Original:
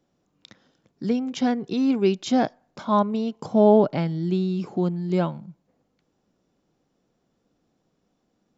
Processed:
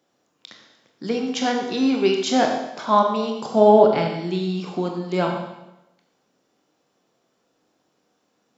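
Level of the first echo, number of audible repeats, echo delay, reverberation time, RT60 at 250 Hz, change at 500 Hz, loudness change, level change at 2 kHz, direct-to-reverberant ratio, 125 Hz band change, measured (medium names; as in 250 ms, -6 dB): no echo, no echo, no echo, 0.90 s, 0.90 s, +4.0 dB, +2.5 dB, +8.0 dB, 1.5 dB, -3.0 dB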